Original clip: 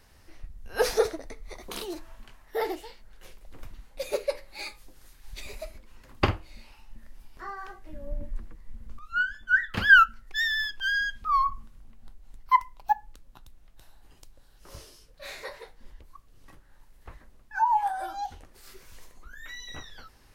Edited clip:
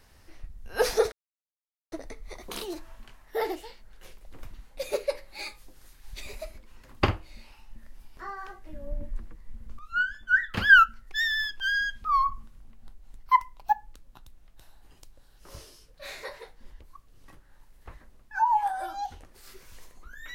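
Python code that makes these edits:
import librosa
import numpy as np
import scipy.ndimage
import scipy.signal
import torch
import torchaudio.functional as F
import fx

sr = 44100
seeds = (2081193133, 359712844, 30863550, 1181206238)

y = fx.edit(x, sr, fx.insert_silence(at_s=1.12, length_s=0.8), tone=tone)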